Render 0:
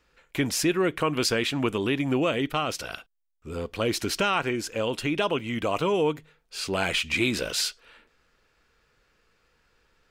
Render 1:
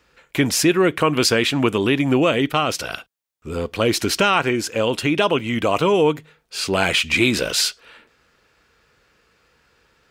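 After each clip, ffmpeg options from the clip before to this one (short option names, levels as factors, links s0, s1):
-af "highpass=58,volume=2.37"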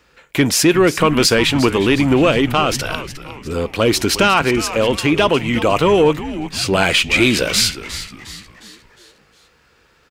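-filter_complex "[0:a]acontrast=35,asplit=6[s0][s1][s2][s3][s4][s5];[s1]adelay=358,afreqshift=-140,volume=0.224[s6];[s2]adelay=716,afreqshift=-280,volume=0.105[s7];[s3]adelay=1074,afreqshift=-420,volume=0.0495[s8];[s4]adelay=1432,afreqshift=-560,volume=0.0232[s9];[s5]adelay=1790,afreqshift=-700,volume=0.011[s10];[s0][s6][s7][s8][s9][s10]amix=inputs=6:normalize=0,volume=0.891"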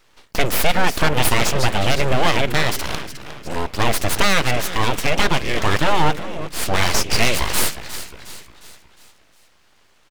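-af "aeval=exprs='abs(val(0))':c=same"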